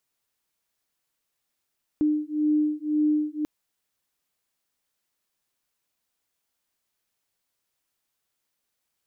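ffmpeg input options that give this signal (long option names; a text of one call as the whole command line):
ffmpeg -f lavfi -i "aevalsrc='0.0631*(sin(2*PI*301*t)+sin(2*PI*302.9*t))':duration=1.44:sample_rate=44100" out.wav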